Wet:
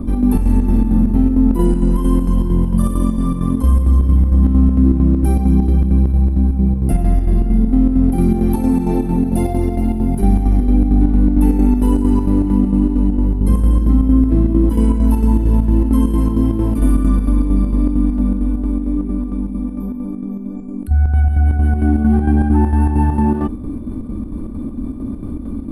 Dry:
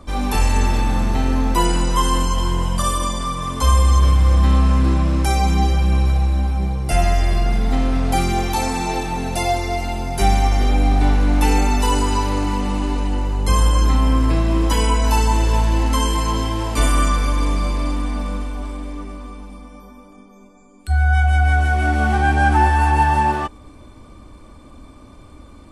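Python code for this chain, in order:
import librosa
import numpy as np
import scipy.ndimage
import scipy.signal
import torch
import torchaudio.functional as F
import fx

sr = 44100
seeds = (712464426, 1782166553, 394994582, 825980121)

y = fx.curve_eq(x, sr, hz=(140.0, 230.0, 580.0, 7200.0, 10000.0), db=(0, 10, -10, -28, -8))
y = fx.chopper(y, sr, hz=4.4, depth_pct=65, duty_pct=65)
y = fx.env_flatten(y, sr, amount_pct=50)
y = y * 10.0 ** (2.0 / 20.0)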